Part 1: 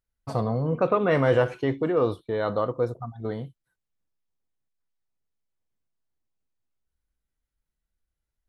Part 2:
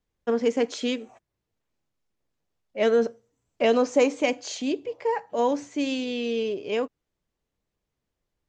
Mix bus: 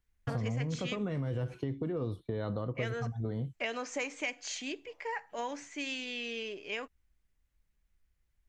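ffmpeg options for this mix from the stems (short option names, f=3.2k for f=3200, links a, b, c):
-filter_complex "[0:a]lowshelf=f=260:g=10.5,acrossover=split=310|3000[a][b][c];[b]acompressor=threshold=-30dB:ratio=3[d];[a][d][c]amix=inputs=3:normalize=0,alimiter=limit=-18dB:level=0:latency=1:release=265,volume=-2dB[e];[1:a]equalizer=f=125:t=o:w=1:g=-12,equalizer=f=250:t=o:w=1:g=-8,equalizer=f=500:t=o:w=1:g=-10,equalizer=f=1k:t=o:w=1:g=-4,equalizer=f=2k:t=o:w=1:g=6,equalizer=f=4k:t=o:w=1:g=-4,volume=-2dB[f];[e][f]amix=inputs=2:normalize=0,acompressor=threshold=-33dB:ratio=3"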